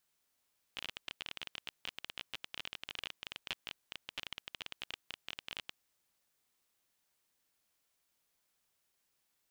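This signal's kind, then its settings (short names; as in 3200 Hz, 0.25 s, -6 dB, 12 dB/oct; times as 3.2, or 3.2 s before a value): random clicks 21/s -23.5 dBFS 5.14 s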